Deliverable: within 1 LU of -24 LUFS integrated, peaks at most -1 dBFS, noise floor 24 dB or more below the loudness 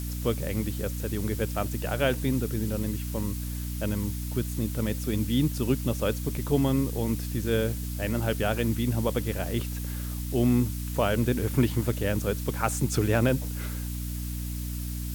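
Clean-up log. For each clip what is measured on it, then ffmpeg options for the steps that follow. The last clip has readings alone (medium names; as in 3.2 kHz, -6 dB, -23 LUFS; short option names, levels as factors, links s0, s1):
hum 60 Hz; highest harmonic 300 Hz; hum level -31 dBFS; noise floor -33 dBFS; noise floor target -53 dBFS; loudness -28.5 LUFS; peak level -10.0 dBFS; loudness target -24.0 LUFS
-> -af "bandreject=f=60:t=h:w=6,bandreject=f=120:t=h:w=6,bandreject=f=180:t=h:w=6,bandreject=f=240:t=h:w=6,bandreject=f=300:t=h:w=6"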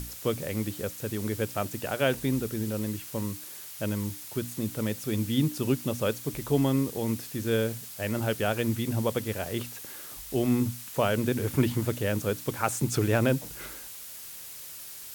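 hum not found; noise floor -43 dBFS; noise floor target -54 dBFS
-> -af "afftdn=nr=11:nf=-43"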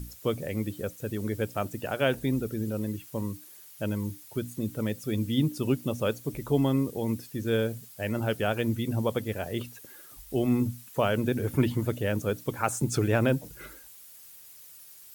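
noise floor -50 dBFS; noise floor target -54 dBFS
-> -af "afftdn=nr=6:nf=-50"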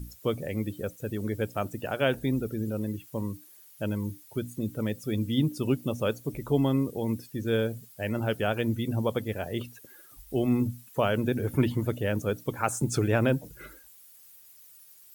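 noise floor -54 dBFS; loudness -29.5 LUFS; peak level -10.5 dBFS; loudness target -24.0 LUFS
-> -af "volume=1.88"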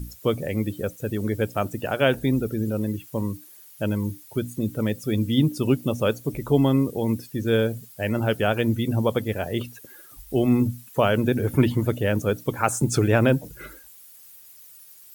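loudness -24.0 LUFS; peak level -5.0 dBFS; noise floor -48 dBFS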